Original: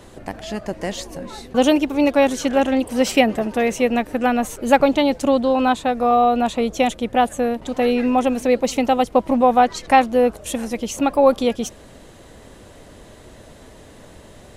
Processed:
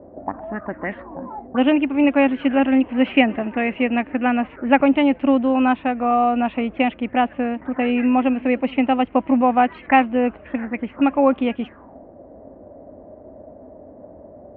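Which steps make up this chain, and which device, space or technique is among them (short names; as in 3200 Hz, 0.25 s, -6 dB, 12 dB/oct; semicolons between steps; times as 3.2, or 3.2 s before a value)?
1.14–2.04 elliptic low-pass 3900 Hz; envelope filter bass rig (envelope low-pass 530–2800 Hz up, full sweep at -19 dBFS; speaker cabinet 62–2200 Hz, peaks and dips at 130 Hz -8 dB, 270 Hz +7 dB, 460 Hz -5 dB); gain -2.5 dB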